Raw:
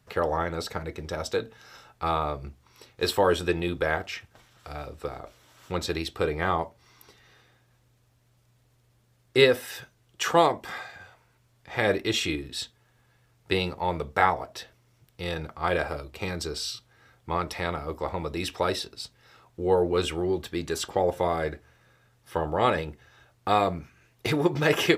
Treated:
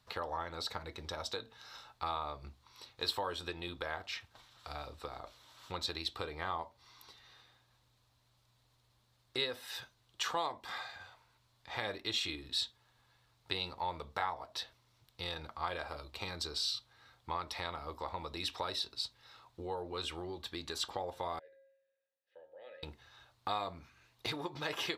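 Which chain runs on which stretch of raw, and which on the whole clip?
0:21.39–0:22.83: formant filter e + mains-hum notches 60/120/180/240/300/360/420/480/540 Hz + tuned comb filter 180 Hz, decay 0.91 s, harmonics odd, mix 80%
whole clip: downward compressor 2.5 to 1, threshold −33 dBFS; graphic EQ with 15 bands 160 Hz −6 dB, 400 Hz −4 dB, 1,000 Hz +7 dB, 4,000 Hz +11 dB; level −7 dB

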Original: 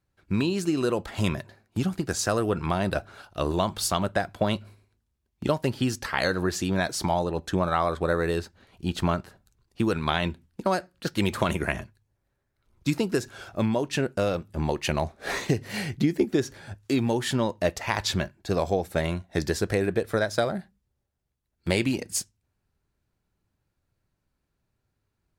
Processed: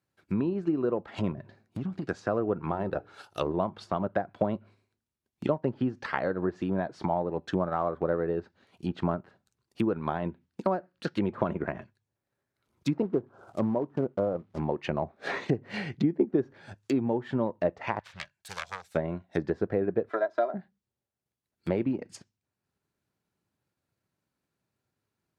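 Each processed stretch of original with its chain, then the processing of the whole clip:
0:01.32–0:02.02: low-shelf EQ 320 Hz +10.5 dB + downward compressor 3 to 1, threshold −29 dBFS + hard clipping −24 dBFS
0:02.71–0:03.47: high-shelf EQ 6,900 Hz +9.5 dB + mains-hum notches 60/120/180/240/300/360/420/480 Hz + comb filter 2.3 ms, depth 33%
0:13.02–0:14.59: Butterworth low-pass 1,300 Hz 48 dB per octave + floating-point word with a short mantissa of 2 bits
0:17.99–0:18.95: phase distortion by the signal itself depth 0.64 ms + guitar amp tone stack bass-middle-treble 10-0-10
0:20.09–0:20.54: high-pass filter 520 Hz + comb filter 3 ms, depth 89%
whole clip: treble cut that deepens with the level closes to 970 Hz, closed at −22.5 dBFS; high-pass filter 140 Hz 12 dB per octave; transient designer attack +1 dB, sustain −4 dB; level −2 dB

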